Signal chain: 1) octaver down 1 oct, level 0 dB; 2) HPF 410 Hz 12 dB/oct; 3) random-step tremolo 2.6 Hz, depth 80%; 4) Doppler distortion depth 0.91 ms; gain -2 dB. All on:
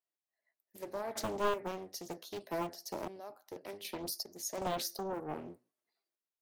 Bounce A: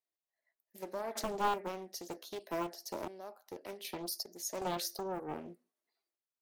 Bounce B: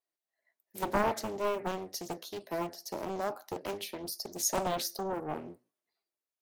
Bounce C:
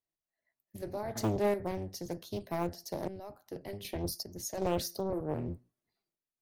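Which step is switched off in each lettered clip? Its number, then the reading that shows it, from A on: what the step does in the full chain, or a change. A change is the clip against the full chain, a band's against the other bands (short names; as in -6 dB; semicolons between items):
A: 1, 1 kHz band +2.0 dB; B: 3, momentary loudness spread change -4 LU; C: 2, loudness change +3.5 LU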